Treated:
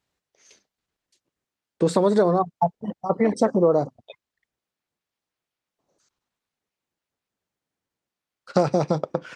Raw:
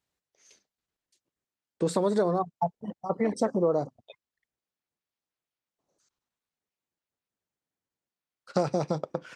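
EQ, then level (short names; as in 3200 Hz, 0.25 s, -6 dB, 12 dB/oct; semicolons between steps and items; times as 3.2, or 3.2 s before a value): high shelf 8900 Hz -9 dB; +6.5 dB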